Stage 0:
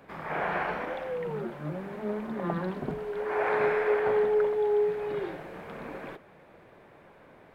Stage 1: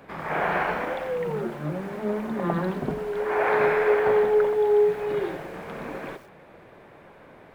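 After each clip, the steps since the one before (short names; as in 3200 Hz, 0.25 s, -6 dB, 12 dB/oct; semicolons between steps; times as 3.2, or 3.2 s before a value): lo-fi delay 89 ms, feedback 35%, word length 8-bit, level -14 dB; gain +5 dB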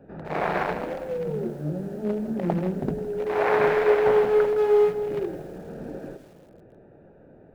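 Wiener smoothing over 41 samples; lo-fi delay 0.162 s, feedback 55%, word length 8-bit, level -14 dB; gain +2 dB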